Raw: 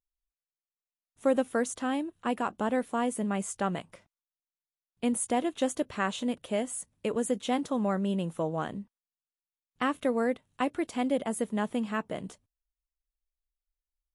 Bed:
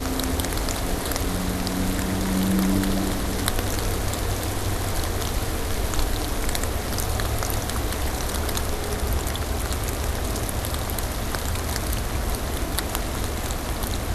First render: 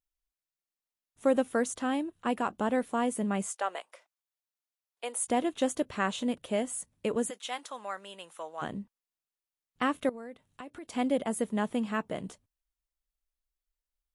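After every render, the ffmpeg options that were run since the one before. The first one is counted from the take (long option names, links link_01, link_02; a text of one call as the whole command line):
ffmpeg -i in.wav -filter_complex "[0:a]asettb=1/sr,asplit=3[link_01][link_02][link_03];[link_01]atrim=end=3.484[link_04];[link_02]atrim=start=3.48:end=5.28,asetpts=PTS-STARTPTS,afade=type=in:duration=0.004:curve=qsin,afade=type=out:start_time=1.796:duration=0.004:curve=qsin,highpass=frequency=500:width=0.5412,highpass=frequency=500:width=1.3066[link_05];[link_03]atrim=start=5.276[link_06];[link_04][link_05]acrossfade=duration=0.004:curve1=hsin:curve2=qsin[link_07];[link_07][link_06]acrossfade=duration=0.004:curve1=qsin:curve2=hsin,asplit=3[link_08][link_09][link_10];[link_08]afade=type=out:start_time=7.29:duration=0.02[link_11];[link_09]highpass=1000,afade=type=in:start_time=7.29:duration=0.02,afade=type=out:start_time=8.61:duration=0.02[link_12];[link_10]afade=type=in:start_time=8.61:duration=0.02[link_13];[link_11][link_12][link_13]amix=inputs=3:normalize=0,asettb=1/sr,asplit=3[link_14][link_15][link_16];[link_14]atrim=end=10.094[link_17];[link_15]atrim=start=10.09:end=10.9,asetpts=PTS-STARTPTS,afade=type=in:duration=0.004:curve=qsin,afade=type=out:start_time=0.806:duration=0.004:curve=qsin,acompressor=threshold=-43dB:ratio=4:attack=3.2:release=140:knee=1:detection=peak[link_18];[link_16]atrim=start=10.896[link_19];[link_17][link_18]acrossfade=duration=0.004:curve1=hsin:curve2=qsin[link_20];[link_20][link_19]acrossfade=duration=0.004:curve1=qsin:curve2=hsin" out.wav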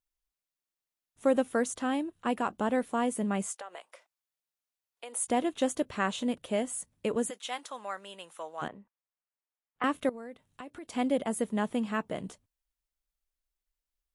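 ffmpeg -i in.wav -filter_complex "[0:a]asettb=1/sr,asplit=3[link_01][link_02][link_03];[link_01]atrim=end=3.584[link_04];[link_02]atrim=start=3.58:end=5.13,asetpts=PTS-STARTPTS,afade=type=in:duration=0.004:curve=qsin,afade=type=out:start_time=1.546:duration=0.004:curve=qsin,acompressor=threshold=-39dB:ratio=5:attack=3.2:release=140:knee=1:detection=peak[link_05];[link_03]atrim=start=5.126[link_06];[link_04][link_05]acrossfade=duration=0.004:curve1=hsin:curve2=qsin[link_07];[link_07][link_06]acrossfade=duration=0.004:curve1=qsin:curve2=hsin,asettb=1/sr,asplit=3[link_08][link_09][link_10];[link_08]atrim=end=8.684[link_11];[link_09]atrim=start=8.68:end=9.84,asetpts=PTS-STARTPTS,afade=type=in:duration=0.004:curve=qsin,afade=type=out:start_time=1.156:duration=0.004:curve=qsin,acrossover=split=470 2400:gain=0.178 1 0.0891[link_12][link_13][link_14];[link_12][link_13][link_14]amix=inputs=3:normalize=0[link_15];[link_10]atrim=start=9.836[link_16];[link_11][link_15]acrossfade=duration=0.004:curve1=hsin:curve2=qsin[link_17];[link_17][link_16]acrossfade=duration=0.004:curve1=qsin:curve2=hsin" out.wav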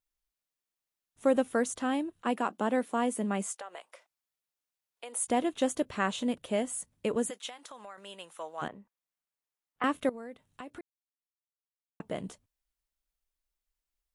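ffmpeg -i in.wav -filter_complex "[0:a]asettb=1/sr,asplit=3[link_01][link_02][link_03];[link_01]atrim=end=2.224[link_04];[link_02]atrim=start=2.22:end=3.56,asetpts=PTS-STARTPTS,afade=type=in:duration=0.004:curve=qsin,afade=type=out:start_time=1.336:duration=0.004:curve=qsin,highpass=frequency=180:width=0.5412,highpass=frequency=180:width=1.3066[link_05];[link_03]atrim=start=3.556[link_06];[link_04][link_05]acrossfade=duration=0.004:curve1=hsin:curve2=qsin[link_07];[link_07][link_06]acrossfade=duration=0.004:curve1=qsin:curve2=hsin,asettb=1/sr,asplit=3[link_08][link_09][link_10];[link_08]atrim=end=7.494[link_11];[link_09]atrim=start=7.49:end=7.98,asetpts=PTS-STARTPTS,afade=type=in:duration=0.004:curve=qsin,afade=type=out:start_time=0.486:duration=0.004:curve=qsin,acompressor=threshold=-42dB:ratio=6:attack=3.2:release=140:knee=1:detection=peak[link_12];[link_10]atrim=start=7.976[link_13];[link_11][link_12]acrossfade=duration=0.004:curve1=hsin:curve2=qsin[link_14];[link_14][link_13]acrossfade=duration=0.004:curve1=qsin:curve2=hsin,asplit=3[link_15][link_16][link_17];[link_15]atrim=end=10.81,asetpts=PTS-STARTPTS,afade=type=out:start_time=10.806:duration=0.004:curve=hsin[link_18];[link_16]atrim=start=10.81:end=12,asetpts=PTS-STARTPTS,volume=0[link_19];[link_17]atrim=start=12,asetpts=PTS-STARTPTS,afade=type=in:duration=0.004:curve=hsin[link_20];[link_18][link_19][link_20]concat=n=3:v=0:a=1" out.wav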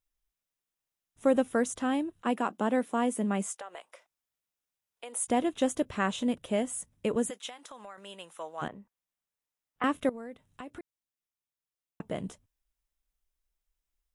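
ffmpeg -i in.wav -af "lowshelf=frequency=170:gain=6,bandreject=frequency=4400:width=11" out.wav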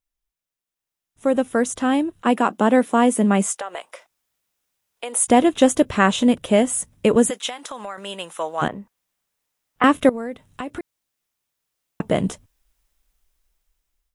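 ffmpeg -i in.wav -af "dynaudnorm=framelen=640:gausssize=5:maxgain=16dB" out.wav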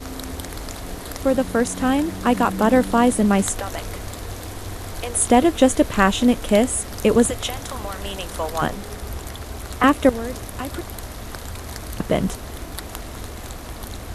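ffmpeg -i in.wav -i bed.wav -filter_complex "[1:a]volume=-6.5dB[link_01];[0:a][link_01]amix=inputs=2:normalize=0" out.wav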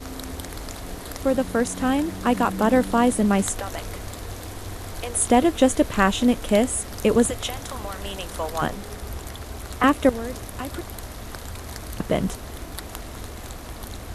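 ffmpeg -i in.wav -af "volume=-2.5dB" out.wav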